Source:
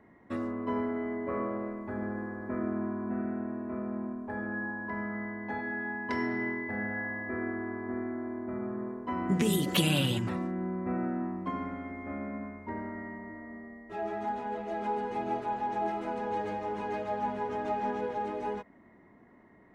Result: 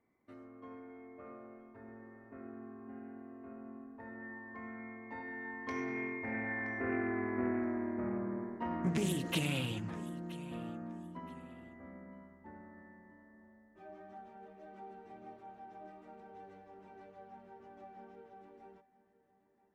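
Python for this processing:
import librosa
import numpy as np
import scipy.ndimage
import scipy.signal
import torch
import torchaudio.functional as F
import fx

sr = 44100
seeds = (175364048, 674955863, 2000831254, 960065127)

p1 = fx.doppler_pass(x, sr, speed_mps=24, closest_m=18.0, pass_at_s=7.45)
p2 = p1 + fx.echo_feedback(p1, sr, ms=973, feedback_pct=24, wet_db=-18.5, dry=0)
p3 = fx.doppler_dist(p2, sr, depth_ms=0.22)
y = p3 * librosa.db_to_amplitude(1.0)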